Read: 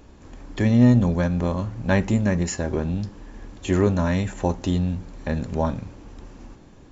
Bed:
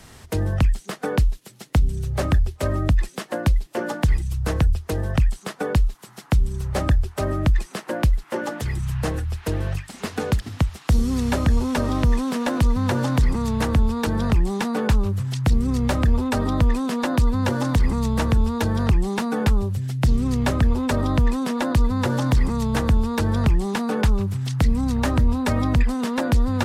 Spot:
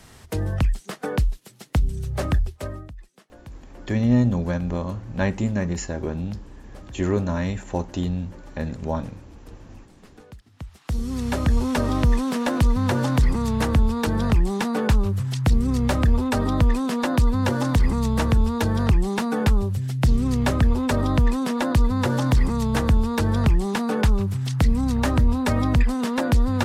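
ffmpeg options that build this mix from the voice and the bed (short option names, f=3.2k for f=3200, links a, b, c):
-filter_complex "[0:a]adelay=3300,volume=-3dB[a];[1:a]volume=20dB,afade=t=out:st=2.38:d=0.52:silence=0.1,afade=t=in:st=10.53:d=1.14:silence=0.0749894[b];[a][b]amix=inputs=2:normalize=0"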